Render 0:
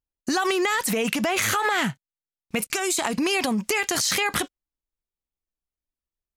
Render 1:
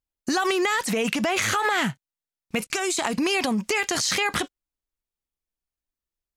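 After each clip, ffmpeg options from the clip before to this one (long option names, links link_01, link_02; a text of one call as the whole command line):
ffmpeg -i in.wav -filter_complex "[0:a]acrossover=split=8800[link_01][link_02];[link_02]acompressor=threshold=-42dB:ratio=4:attack=1:release=60[link_03];[link_01][link_03]amix=inputs=2:normalize=0" out.wav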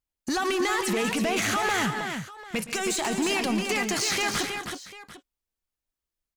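ffmpeg -i in.wav -filter_complex "[0:a]asoftclip=type=tanh:threshold=-22dB,asplit=2[link_01][link_02];[link_02]aecho=0:1:117|142|213|319|745:0.133|0.188|0.211|0.501|0.141[link_03];[link_01][link_03]amix=inputs=2:normalize=0" out.wav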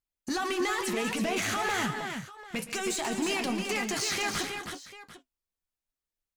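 ffmpeg -i in.wav -af "flanger=delay=7.4:depth=4.6:regen=-51:speed=1:shape=sinusoidal" out.wav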